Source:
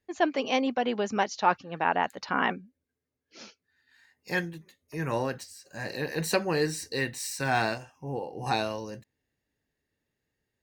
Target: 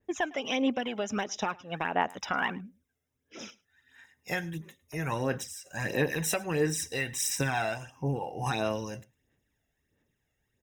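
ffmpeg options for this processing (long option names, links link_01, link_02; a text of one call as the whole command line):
ffmpeg -i in.wav -filter_complex "[0:a]acompressor=threshold=-30dB:ratio=6,aphaser=in_gain=1:out_gain=1:delay=1.5:decay=0.53:speed=1.5:type=sinusoidal,asuperstop=centerf=4400:order=8:qfactor=4.4,asplit=2[link_01][link_02];[link_02]aecho=0:1:106:0.0668[link_03];[link_01][link_03]amix=inputs=2:normalize=0,adynamicequalizer=threshold=0.00355:dfrequency=2100:dqfactor=0.7:tfrequency=2100:tqfactor=0.7:attack=5:release=100:ratio=0.375:range=1.5:mode=boostabove:tftype=highshelf,volume=2dB" out.wav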